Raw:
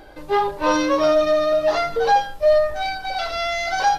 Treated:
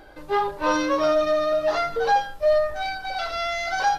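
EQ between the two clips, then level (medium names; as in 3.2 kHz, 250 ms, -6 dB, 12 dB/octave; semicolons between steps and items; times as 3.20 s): peaking EQ 1.4 kHz +3.5 dB 0.64 oct; -4.0 dB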